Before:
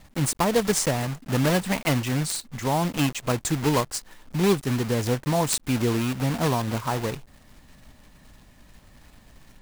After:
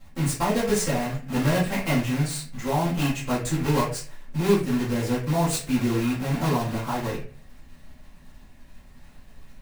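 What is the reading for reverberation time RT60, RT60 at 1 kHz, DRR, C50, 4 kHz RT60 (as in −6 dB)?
0.45 s, 0.40 s, −9.5 dB, 6.5 dB, 0.30 s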